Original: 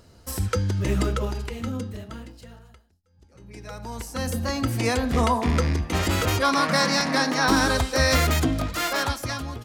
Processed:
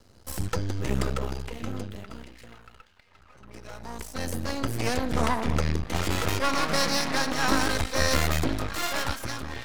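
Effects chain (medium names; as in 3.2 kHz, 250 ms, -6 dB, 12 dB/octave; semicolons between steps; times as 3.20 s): repeats whose band climbs or falls 756 ms, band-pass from 3 kHz, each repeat -0.7 oct, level -10 dB; half-wave rectifier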